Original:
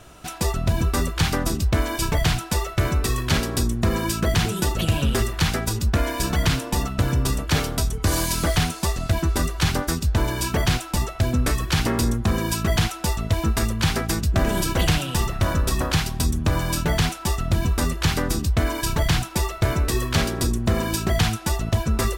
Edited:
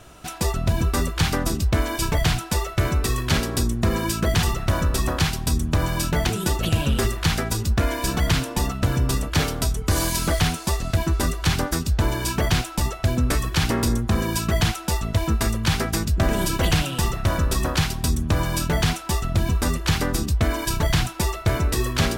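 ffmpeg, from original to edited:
-filter_complex "[0:a]asplit=3[s0][s1][s2];[s0]atrim=end=4.432[s3];[s1]atrim=start=15.158:end=17.002[s4];[s2]atrim=start=4.428[s5];[s3][s4]acrossfade=d=0.004:c1=hsin:c2=hsin[s6];[s6][s5]acrossfade=d=0.004:c1=hsin:c2=hsin"

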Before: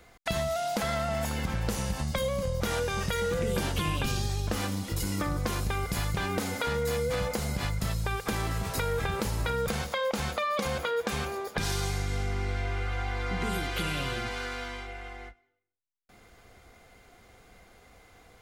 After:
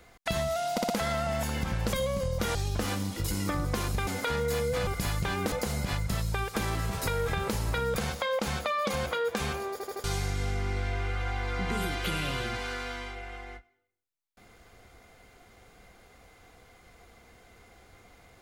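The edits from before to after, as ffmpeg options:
-filter_complex "[0:a]asplit=13[s0][s1][s2][s3][s4][s5][s6][s7][s8][s9][s10][s11][s12];[s0]atrim=end=0.782[s13];[s1]atrim=start=0.718:end=0.782[s14];[s2]atrim=start=0.718:end=0.782[s15];[s3]atrim=start=0.718:end=1.752[s16];[s4]atrim=start=2.148:end=2.772[s17];[s5]atrim=start=4.268:end=5.792[s18];[s6]atrim=start=6.438:end=7.242[s19];[s7]atrim=start=5.788:end=6.442[s20];[s8]atrim=start=7.238:end=11.522[s21];[s9]atrim=start=11.438:end=11.522[s22];[s10]atrim=start=11.438:end=11.522[s23];[s11]atrim=start=11.438:end=11.522[s24];[s12]atrim=start=11.758[s25];[s13][s14]acrossfade=d=0.004:c1=hsin:c2=hsin[s26];[s26][s15]acrossfade=d=0.004:c1=hsin:c2=hsin[s27];[s27][s16]acrossfade=d=0.004:c1=hsin:c2=hsin[s28];[s28][s17]acrossfade=d=0.004:c1=hsin:c2=hsin[s29];[s29][s18]acrossfade=d=0.004:c1=hsin:c2=hsin[s30];[s30][s19]acrossfade=d=0.004:c1=hsin:c2=hsin[s31];[s31][s20]acrossfade=d=0.004:c1=hsin:c2=hsin[s32];[s32][s21]acrossfade=d=0.004:c1=hsin:c2=hsin[s33];[s33][s22]acrossfade=d=0.004:c1=hsin:c2=hsin[s34];[s34][s23]acrossfade=d=0.004:c1=hsin:c2=hsin[s35];[s35][s24]acrossfade=d=0.004:c1=hsin:c2=hsin[s36];[s36][s25]acrossfade=d=0.004:c1=hsin:c2=hsin"

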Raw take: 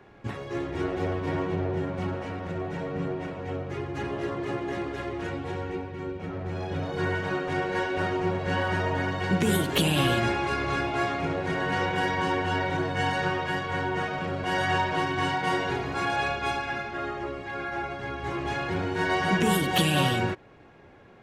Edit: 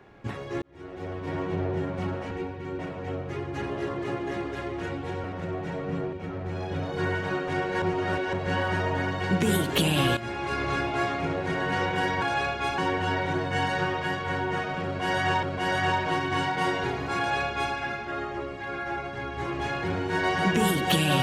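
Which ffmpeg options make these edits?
-filter_complex "[0:a]asplit=12[s0][s1][s2][s3][s4][s5][s6][s7][s8][s9][s10][s11];[s0]atrim=end=0.62,asetpts=PTS-STARTPTS,afade=t=out:st=0.616:d=0.004:c=hsin[s12];[s1]atrim=start=0.62:end=2.312,asetpts=PTS-STARTPTS,afade=t=in:d=0.99[s13];[s2]atrim=start=5.648:end=6.132[s14];[s3]atrim=start=3.198:end=5.652[s15];[s4]atrim=start=2.308:end=3.202[s16];[s5]atrim=start=6.128:end=7.822[s17];[s6]atrim=start=7.818:end=8.332,asetpts=PTS-STARTPTS,areverse[s18];[s7]atrim=start=8.328:end=10.17,asetpts=PTS-STARTPTS,afade=t=out:st=1.838:d=0.004:c=hsin:silence=0.199526[s19];[s8]atrim=start=10.17:end=12.222,asetpts=PTS-STARTPTS,afade=t=in:d=0.44:silence=0.199526[s20];[s9]atrim=start=16.038:end=16.602[s21];[s10]atrim=start=12.218:end=14.872[s22];[s11]atrim=start=14.288[s23];[s12][s13]concat=n=2:v=0:a=1[s24];[s24][s14]acrossfade=d=0.004:c1=hsin:c2=hsin[s25];[s25][s15]acrossfade=d=0.004:c1=hsin:c2=hsin[s26];[s26][s16]acrossfade=d=0.004:c1=hsin:c2=hsin[s27];[s27][s17]acrossfade=d=0.004:c1=hsin:c2=hsin[s28];[s28][s18]acrossfade=d=0.004:c1=hsin:c2=hsin[s29];[s19][s20]concat=n=2:v=0:a=1[s30];[s29][s30]acrossfade=d=0.004:c1=hsin:c2=hsin[s31];[s31][s21]acrossfade=d=0.004:c1=hsin:c2=hsin[s32];[s32][s22]acrossfade=d=0.004:c1=hsin:c2=hsin[s33];[s33][s23]acrossfade=d=0.004:c1=hsin:c2=hsin"

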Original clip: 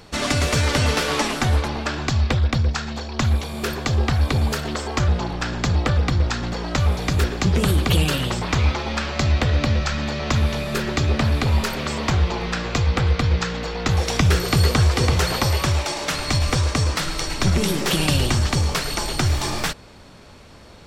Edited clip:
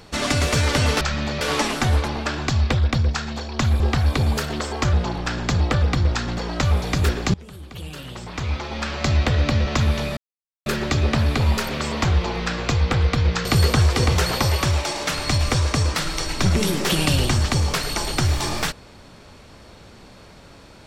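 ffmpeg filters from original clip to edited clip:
-filter_complex "[0:a]asplit=8[s0][s1][s2][s3][s4][s5][s6][s7];[s0]atrim=end=1.012[s8];[s1]atrim=start=9.818:end=10.222[s9];[s2]atrim=start=1.008:end=3.402[s10];[s3]atrim=start=3.948:end=7.49,asetpts=PTS-STARTPTS,afade=t=out:st=3.538:d=0.004:c=hsin:silence=0.0749894[s11];[s4]atrim=start=7.49:end=9.822,asetpts=PTS-STARTPTS,afade=t=in:d=1.74:c=qua:silence=0.0749894[s12];[s5]atrim=start=10.218:end=10.72,asetpts=PTS-STARTPTS,afade=t=out:st=0.498:d=0.004:c=hsin,apad=pad_dur=0.49[s13];[s6]atrim=start=10.72:end=13.512,asetpts=PTS-STARTPTS,afade=t=in:d=0.004:c=hsin[s14];[s7]atrim=start=14.458[s15];[s8][s9]acrossfade=d=0.004:c1=hsin:c2=hsin[s16];[s16][s10]acrossfade=d=0.004:c1=hsin:c2=hsin[s17];[s11][s12]concat=n=2:v=0:a=1[s18];[s17][s18]acrossfade=d=0.004:c1=hsin:c2=hsin[s19];[s13][s14]concat=n=2:v=0:a=1[s20];[s19][s20]acrossfade=d=0.004:c1=hsin:c2=hsin[s21];[s21][s15]acrossfade=d=0.004:c1=hsin:c2=hsin"

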